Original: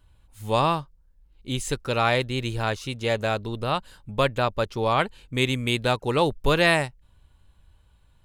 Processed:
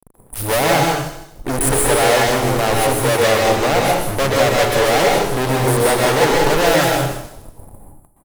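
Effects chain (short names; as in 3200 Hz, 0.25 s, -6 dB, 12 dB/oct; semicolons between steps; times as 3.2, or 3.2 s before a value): elliptic band-stop 780–9700 Hz; bell 210 Hz -9.5 dB 0.45 oct; notches 60/120/180/240/300/360/420 Hz; comb 7 ms, depth 31%; fuzz box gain 49 dB, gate -51 dBFS; bell 74 Hz -12 dB 2.9 oct; on a send: thin delay 0.155 s, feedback 31%, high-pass 5200 Hz, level -7 dB; on the sum: plate-style reverb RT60 0.79 s, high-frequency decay 0.9×, pre-delay 0.11 s, DRR -1.5 dB; gain -1 dB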